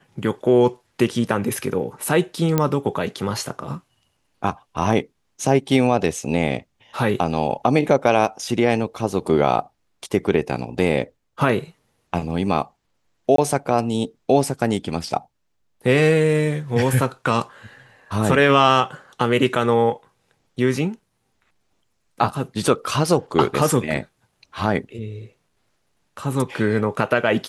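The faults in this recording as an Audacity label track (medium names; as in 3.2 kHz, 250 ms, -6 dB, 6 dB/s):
2.580000	2.580000	pop -5 dBFS
13.360000	13.380000	dropout 23 ms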